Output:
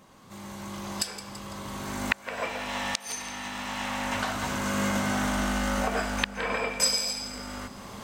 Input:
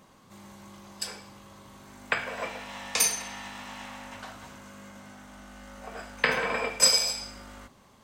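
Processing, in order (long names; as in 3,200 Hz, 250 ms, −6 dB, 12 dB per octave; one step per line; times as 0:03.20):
camcorder AGC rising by 16 dB per second
gate with flip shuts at −3 dBFS, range −33 dB
echo with a time of its own for lows and highs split 380 Hz, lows 715 ms, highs 167 ms, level −15 dB
in parallel at 0 dB: downward compressor, threshold −37 dBFS, peak gain reduction 21 dB
on the sum: level −5.5 dB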